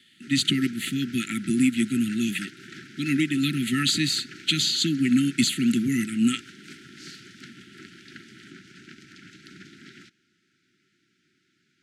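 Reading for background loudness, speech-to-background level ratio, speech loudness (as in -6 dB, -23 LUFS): -44.0 LUFS, 20.0 dB, -24.0 LUFS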